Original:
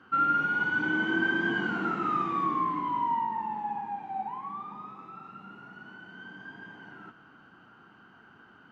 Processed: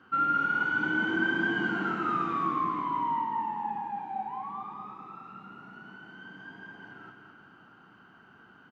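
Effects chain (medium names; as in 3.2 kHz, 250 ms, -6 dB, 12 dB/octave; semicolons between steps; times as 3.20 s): feedback delay 211 ms, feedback 50%, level -7 dB; trim -1.5 dB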